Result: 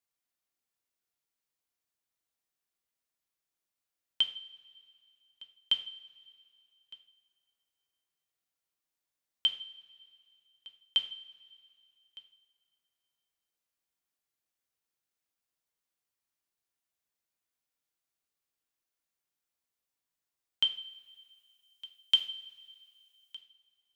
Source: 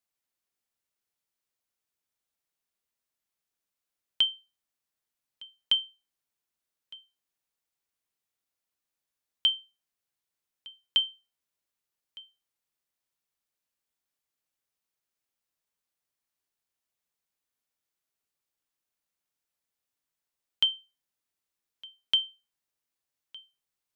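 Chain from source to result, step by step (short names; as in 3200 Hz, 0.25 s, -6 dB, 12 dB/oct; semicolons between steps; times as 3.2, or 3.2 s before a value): 20.65–23.37 high shelf 4500 Hz +11.5 dB; two-slope reverb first 0.49 s, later 2.5 s, from -18 dB, DRR 5.5 dB; gain -3 dB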